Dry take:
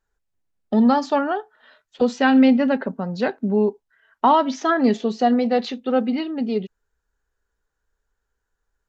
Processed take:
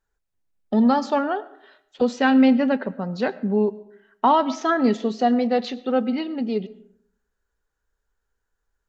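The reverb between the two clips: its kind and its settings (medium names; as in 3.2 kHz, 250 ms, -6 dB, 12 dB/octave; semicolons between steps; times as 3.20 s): algorithmic reverb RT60 0.71 s, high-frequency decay 0.5×, pre-delay 60 ms, DRR 18.5 dB; trim -1.5 dB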